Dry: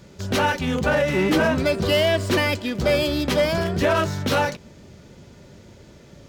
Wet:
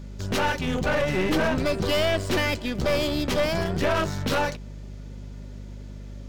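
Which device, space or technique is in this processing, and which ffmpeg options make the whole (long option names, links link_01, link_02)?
valve amplifier with mains hum: -af "aeval=exprs='(tanh(7.94*val(0)+0.6)-tanh(0.6))/7.94':channel_layout=same,aeval=exprs='val(0)+0.0141*(sin(2*PI*50*n/s)+sin(2*PI*2*50*n/s)/2+sin(2*PI*3*50*n/s)/3+sin(2*PI*4*50*n/s)/4+sin(2*PI*5*50*n/s)/5)':channel_layout=same"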